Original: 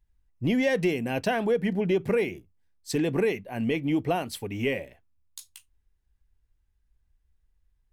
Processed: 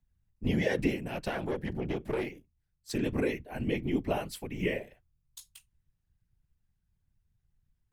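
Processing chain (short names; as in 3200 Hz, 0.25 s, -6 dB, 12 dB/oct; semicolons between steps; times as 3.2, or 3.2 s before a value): whisperiser; frequency shift -36 Hz; 0.96–2.91 tube stage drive 21 dB, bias 0.6; gain -4.5 dB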